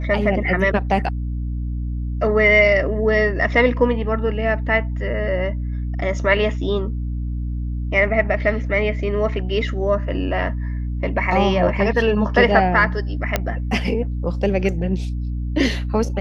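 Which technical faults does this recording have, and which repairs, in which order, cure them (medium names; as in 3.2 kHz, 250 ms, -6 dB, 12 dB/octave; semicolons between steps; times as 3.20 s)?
hum 60 Hz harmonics 5 -24 dBFS
13.36 s: pop -4 dBFS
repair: de-click; de-hum 60 Hz, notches 5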